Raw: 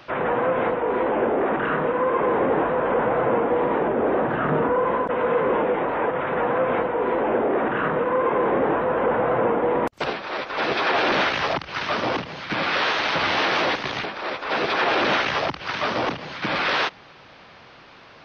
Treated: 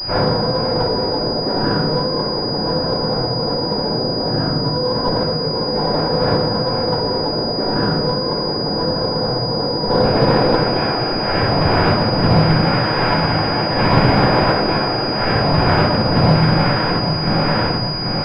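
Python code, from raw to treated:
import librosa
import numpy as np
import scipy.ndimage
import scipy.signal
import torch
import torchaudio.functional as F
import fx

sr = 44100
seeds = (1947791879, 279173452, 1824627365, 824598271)

y = fx.tilt_eq(x, sr, slope=-2.5)
y = fx.echo_feedback(y, sr, ms=789, feedback_pct=55, wet_db=-11.0)
y = fx.over_compress(y, sr, threshold_db=-27.0, ratio=-1.0)
y = fx.peak_eq(y, sr, hz=140.0, db=9.0, octaves=1.0)
y = fx.room_shoebox(y, sr, seeds[0], volume_m3=110.0, walls='mixed', distance_m=4.1)
y = fx.pwm(y, sr, carrier_hz=4900.0)
y = F.gain(torch.from_numpy(y), -7.0).numpy()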